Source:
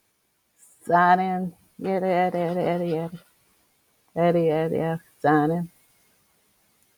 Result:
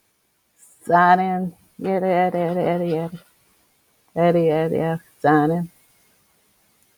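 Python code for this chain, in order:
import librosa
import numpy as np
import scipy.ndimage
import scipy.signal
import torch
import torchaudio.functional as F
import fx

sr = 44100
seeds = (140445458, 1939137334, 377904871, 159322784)

y = fx.dynamic_eq(x, sr, hz=5500.0, q=1.0, threshold_db=-49.0, ratio=4.0, max_db=-6, at=(1.2, 2.9))
y = y * librosa.db_to_amplitude(3.5)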